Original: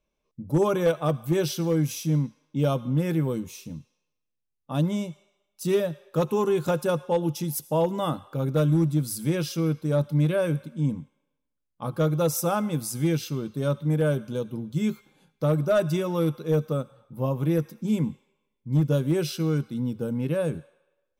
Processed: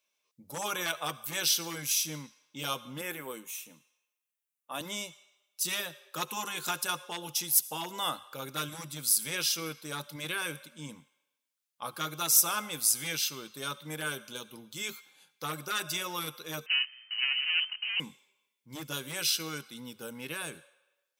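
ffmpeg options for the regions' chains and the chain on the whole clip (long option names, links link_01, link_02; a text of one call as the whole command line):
ffmpeg -i in.wav -filter_complex "[0:a]asettb=1/sr,asplit=3[link_01][link_02][link_03];[link_01]atrim=end=3.014[link_04];[link_02]atrim=start=3.01:end=4.81,asetpts=PTS-STARTPTS,afade=type=in:duration=0.004:curve=qsin,afade=type=out:start_time=1.796:duration=0.004:curve=qsin,highpass=220,equalizer=frequency=4700:width=1.8:gain=-14.5[link_05];[link_03]atrim=start=4.806[link_06];[link_04][link_05]acrossfade=duration=0.004:curve1=hsin:curve2=qsin[link_07];[link_07][link_06]acrossfade=duration=0.004:curve1=qsin:curve2=hsin,asettb=1/sr,asplit=3[link_08][link_09][link_10];[link_08]atrim=end=16.664[link_11];[link_09]atrim=start=16.66:end=18,asetpts=PTS-STARTPTS,afade=type=in:duration=0.004:curve=qsin,afade=type=out:start_time=1.336:duration=0.004:curve=qsin,asoftclip=type=hard:threshold=-31.5dB,acrusher=bits=8:dc=4:mix=0:aa=0.000001,lowpass=frequency=2600:width_type=q:width=0.5098,lowpass=frequency=2600:width_type=q:width=0.6013,lowpass=frequency=2600:width_type=q:width=0.9,lowpass=frequency=2600:width_type=q:width=2.563,afreqshift=-3100[link_12];[link_10]atrim=start=17.996[link_13];[link_11][link_12]acrossfade=duration=0.004:curve1=hsin:curve2=qsin[link_14];[link_14][link_13]acrossfade=duration=0.004:curve1=qsin:curve2=hsin,highpass=frequency=630:poles=1,afftfilt=real='re*lt(hypot(re,im),0.251)':imag='im*lt(hypot(re,im),0.251)':win_size=1024:overlap=0.75,tiltshelf=frequency=1100:gain=-8.5" out.wav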